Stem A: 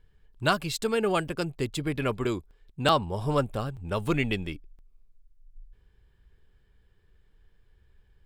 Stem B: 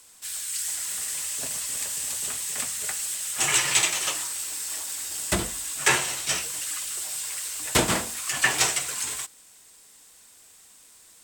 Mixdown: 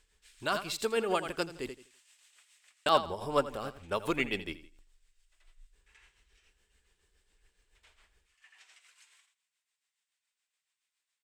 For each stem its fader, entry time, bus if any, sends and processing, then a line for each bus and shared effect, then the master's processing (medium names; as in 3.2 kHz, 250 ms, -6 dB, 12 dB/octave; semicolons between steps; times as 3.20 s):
-0.5 dB, 0.00 s, muted 1.70–2.86 s, no send, echo send -11 dB, high-pass 41 Hz 6 dB/octave; gain riding 2 s
2.46 s -9.5 dB -> 2.98 s -22 dB, 0.00 s, no send, echo send -12.5 dB, band-pass filter 2.4 kHz, Q 1.2; auto duck -23 dB, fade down 1.15 s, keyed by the first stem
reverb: none
echo: feedback delay 83 ms, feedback 26%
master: peaking EQ 120 Hz -14.5 dB 1.5 oct; tremolo 7.1 Hz, depth 52%